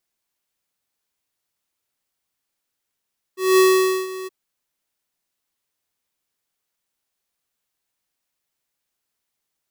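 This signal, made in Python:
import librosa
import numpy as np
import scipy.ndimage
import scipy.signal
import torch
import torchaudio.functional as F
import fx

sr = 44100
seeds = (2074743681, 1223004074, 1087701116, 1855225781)

y = fx.adsr_tone(sr, wave='square', hz=375.0, attack_ms=209.0, decay_ms=490.0, sustain_db=-18.0, held_s=0.9, release_ms=22.0, level_db=-12.5)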